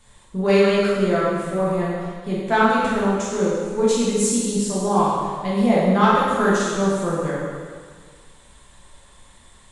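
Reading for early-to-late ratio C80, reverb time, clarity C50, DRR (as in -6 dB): 0.5 dB, 1.7 s, -2.5 dB, -7.5 dB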